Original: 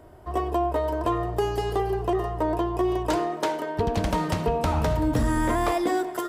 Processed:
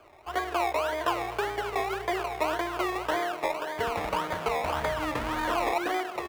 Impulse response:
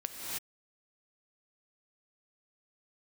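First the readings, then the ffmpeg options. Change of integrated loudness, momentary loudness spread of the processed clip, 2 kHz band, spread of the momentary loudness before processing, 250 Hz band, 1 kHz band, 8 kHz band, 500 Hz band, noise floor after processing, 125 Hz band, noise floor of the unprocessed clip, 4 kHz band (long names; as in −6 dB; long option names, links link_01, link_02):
−4.0 dB, 3 LU, +4.0 dB, 3 LU, −9.5 dB, −1.5 dB, −3.5 dB, −4.5 dB, −41 dBFS, −14.5 dB, −36 dBFS, +1.5 dB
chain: -filter_complex "[0:a]acrusher=samples=23:mix=1:aa=0.000001:lfo=1:lforange=13.8:lforate=1.8,acrossover=split=460 2900:gain=0.178 1 0.251[link_01][link_02][link_03];[link_01][link_02][link_03]amix=inputs=3:normalize=0,aecho=1:1:238:0.119"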